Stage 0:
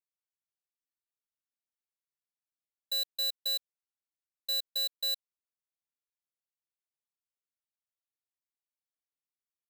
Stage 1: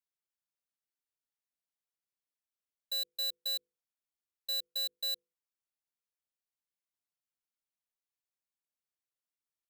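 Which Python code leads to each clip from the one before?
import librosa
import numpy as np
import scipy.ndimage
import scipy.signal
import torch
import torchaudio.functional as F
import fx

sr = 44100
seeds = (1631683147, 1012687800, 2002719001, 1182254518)

y = fx.hum_notches(x, sr, base_hz=50, count=10)
y = y * librosa.db_to_amplitude(-3.0)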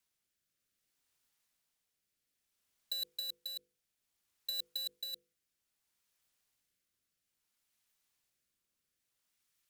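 y = fx.peak_eq(x, sr, hz=540.0, db=-4.5, octaves=2.1)
y = fx.over_compress(y, sr, threshold_db=-40.0, ratio=-0.5)
y = fx.rotary(y, sr, hz=0.6)
y = y * librosa.db_to_amplitude(6.0)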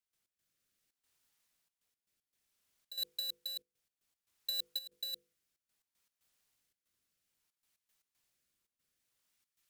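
y = fx.step_gate(x, sr, bpm=116, pattern='.x.xxxx.xxxxx.x', floor_db=-12.0, edge_ms=4.5)
y = y * librosa.db_to_amplitude(1.5)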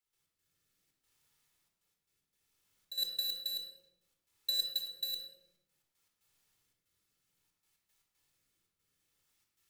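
y = fx.room_shoebox(x, sr, seeds[0], volume_m3=2800.0, walls='furnished', distance_m=4.2)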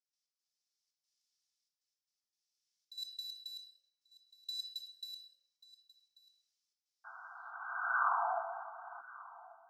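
y = fx.spec_paint(x, sr, seeds[1], shape='noise', start_s=7.04, length_s=1.97, low_hz=660.0, high_hz=1600.0, level_db=-27.0)
y = fx.filter_sweep_bandpass(y, sr, from_hz=5300.0, to_hz=290.0, start_s=7.33, end_s=8.75, q=3.9)
y = y + 10.0 ** (-20.0 / 20.0) * np.pad(y, (int(1138 * sr / 1000.0), 0))[:len(y)]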